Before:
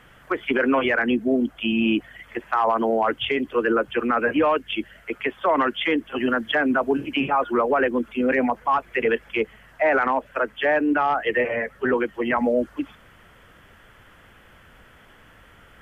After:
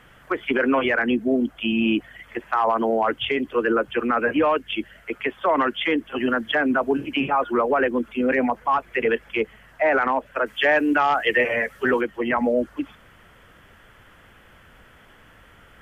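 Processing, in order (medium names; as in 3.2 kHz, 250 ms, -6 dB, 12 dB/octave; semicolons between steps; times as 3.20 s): 10.46–12.01 s: treble shelf 2.5 kHz +12 dB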